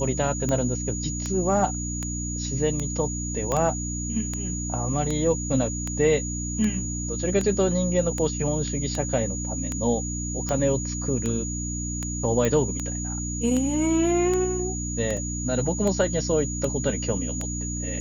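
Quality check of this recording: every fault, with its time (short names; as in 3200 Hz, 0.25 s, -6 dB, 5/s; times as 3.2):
hum 60 Hz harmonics 5 -31 dBFS
tick 78 rpm -14 dBFS
tone 6800 Hz -32 dBFS
3.52 pop -13 dBFS
12.45 pop -11 dBFS
15.17 gap 2.9 ms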